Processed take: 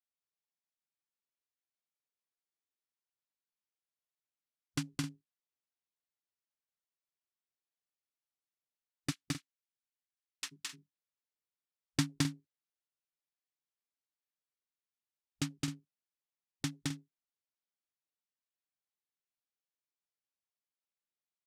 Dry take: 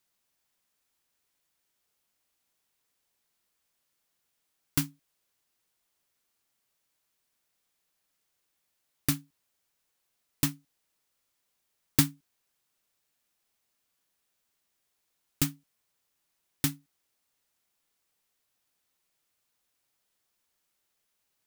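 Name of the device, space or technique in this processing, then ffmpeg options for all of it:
over-cleaned archive recording: -filter_complex "[0:a]asplit=3[link_01][link_02][link_03];[link_01]afade=type=out:start_time=9.1:duration=0.02[link_04];[link_02]highpass=1400,afade=type=in:start_time=9.1:duration=0.02,afade=type=out:start_time=10.51:duration=0.02[link_05];[link_03]afade=type=in:start_time=10.51:duration=0.02[link_06];[link_04][link_05][link_06]amix=inputs=3:normalize=0,highpass=100,lowpass=7000,afwtdn=0.00355,aecho=1:1:215.7|262.4:0.891|0.282,volume=-6dB"

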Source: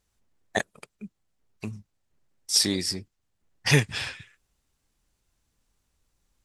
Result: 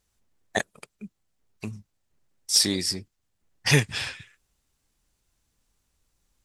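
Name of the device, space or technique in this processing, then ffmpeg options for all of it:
exciter from parts: -filter_complex "[0:a]asplit=2[link_01][link_02];[link_02]highpass=frequency=4800:poles=1,asoftclip=type=tanh:threshold=-18.5dB,volume=-8dB[link_03];[link_01][link_03]amix=inputs=2:normalize=0"

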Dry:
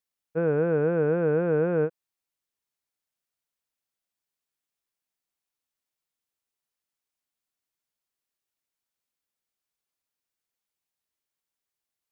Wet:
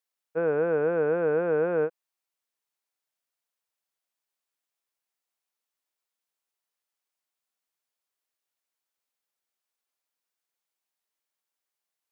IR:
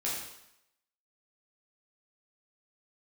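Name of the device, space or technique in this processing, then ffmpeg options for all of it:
filter by subtraction: -filter_complex "[0:a]asplit=2[link_01][link_02];[link_02]lowpass=700,volume=-1[link_03];[link_01][link_03]amix=inputs=2:normalize=0"

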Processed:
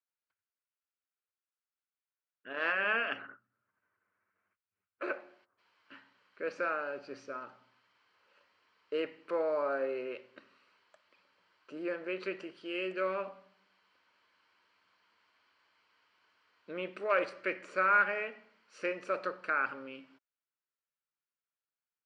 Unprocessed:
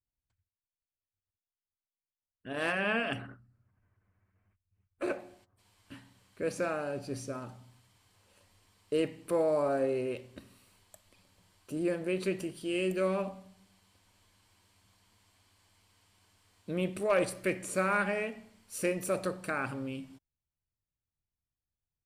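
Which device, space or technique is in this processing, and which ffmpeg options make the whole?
phone earpiece: -af "highpass=480,equalizer=frequency=740:width_type=q:width=4:gain=-7,equalizer=frequency=1400:width_type=q:width=4:gain=7,equalizer=frequency=3600:width_type=q:width=4:gain=-8,lowpass=frequency=4200:width=0.5412,lowpass=frequency=4200:width=1.3066"

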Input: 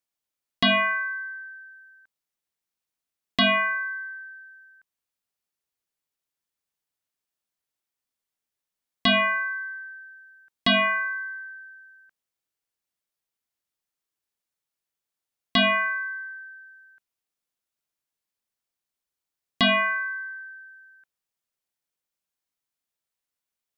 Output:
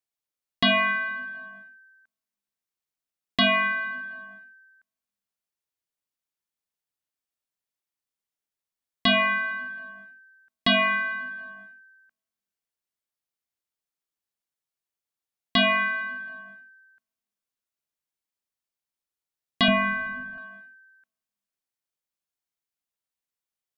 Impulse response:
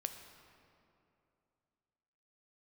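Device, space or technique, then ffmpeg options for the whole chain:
keyed gated reverb: -filter_complex "[0:a]asplit=3[link_01][link_02][link_03];[1:a]atrim=start_sample=2205[link_04];[link_02][link_04]afir=irnorm=-1:irlink=0[link_05];[link_03]apad=whole_len=1048555[link_06];[link_05][link_06]sidechaingate=range=-36dB:threshold=-45dB:ratio=16:detection=peak,volume=-2.5dB[link_07];[link_01][link_07]amix=inputs=2:normalize=0,asettb=1/sr,asplit=3[link_08][link_09][link_10];[link_08]atrim=end=19.684[link_11];[link_09]atrim=start=19.68:end=20.38,asetpts=PTS-STARTPTS,afade=type=in:duration=0.004:curve=qsin,afade=type=out:start_time=0.696:duration=0.004:curve=qsin,aemphasis=mode=reproduction:type=riaa[link_12];[link_10]atrim=start=20.376[link_13];[link_11][link_12]acrossfade=duration=0.004:curve1=hsin:curve2=qsin[link_14];[link_14][link_13]acrossfade=duration=0.004:curve1=qsin:curve2=hsin,volume=-4.5dB"

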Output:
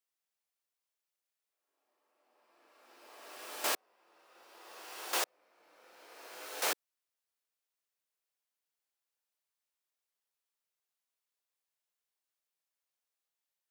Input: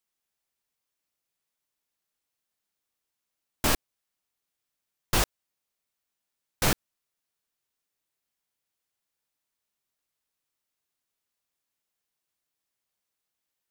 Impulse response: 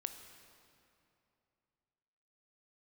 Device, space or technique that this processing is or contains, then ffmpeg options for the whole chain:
ghost voice: -filter_complex "[0:a]areverse[link_01];[1:a]atrim=start_sample=2205[link_02];[link_01][link_02]afir=irnorm=-1:irlink=0,areverse,highpass=frequency=410:width=0.5412,highpass=frequency=410:width=1.3066,volume=-4dB"

